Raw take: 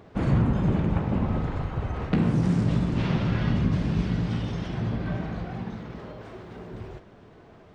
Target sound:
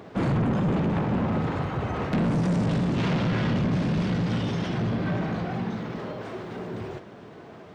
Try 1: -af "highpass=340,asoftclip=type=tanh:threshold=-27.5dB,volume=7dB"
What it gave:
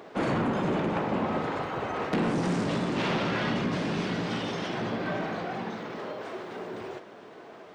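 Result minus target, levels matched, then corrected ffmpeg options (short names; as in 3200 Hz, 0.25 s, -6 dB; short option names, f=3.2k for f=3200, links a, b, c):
125 Hz band -5.5 dB
-af "highpass=130,asoftclip=type=tanh:threshold=-27.5dB,volume=7dB"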